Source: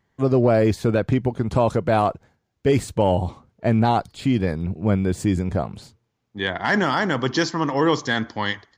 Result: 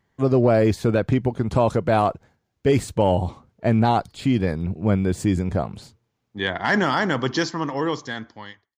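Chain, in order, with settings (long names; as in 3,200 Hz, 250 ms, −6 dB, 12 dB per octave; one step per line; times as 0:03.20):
fade-out on the ending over 1.67 s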